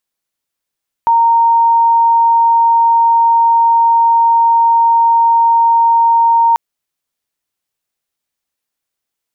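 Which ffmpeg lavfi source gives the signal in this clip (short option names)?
-f lavfi -i "sine=f=925:d=5.49:r=44100,volume=11.56dB"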